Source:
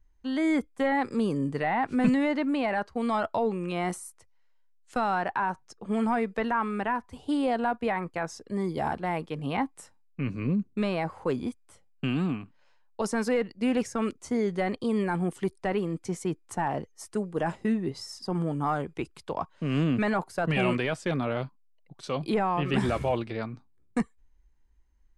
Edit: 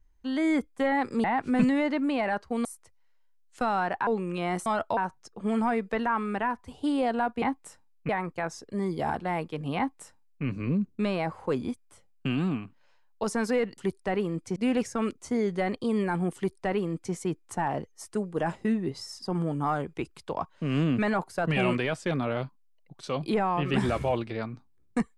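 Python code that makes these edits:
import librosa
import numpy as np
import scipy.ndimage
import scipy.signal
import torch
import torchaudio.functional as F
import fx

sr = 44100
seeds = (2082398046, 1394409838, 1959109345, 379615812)

y = fx.edit(x, sr, fx.cut(start_s=1.24, length_s=0.45),
    fx.swap(start_s=3.1, length_s=0.31, other_s=4.0, other_length_s=1.42),
    fx.duplicate(start_s=9.55, length_s=0.67, to_s=7.87),
    fx.duplicate(start_s=15.36, length_s=0.78, to_s=13.56), tone=tone)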